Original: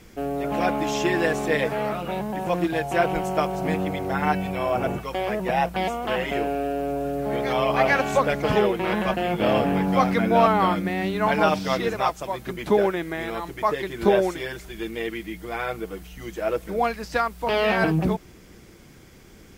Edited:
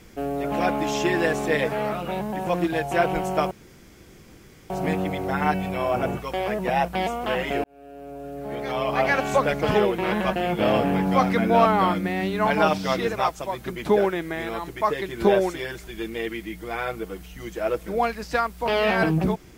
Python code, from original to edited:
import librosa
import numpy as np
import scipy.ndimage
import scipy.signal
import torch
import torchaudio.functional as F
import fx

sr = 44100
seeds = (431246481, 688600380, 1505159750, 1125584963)

y = fx.edit(x, sr, fx.insert_room_tone(at_s=3.51, length_s=1.19),
    fx.fade_in_span(start_s=6.45, length_s=1.74), tone=tone)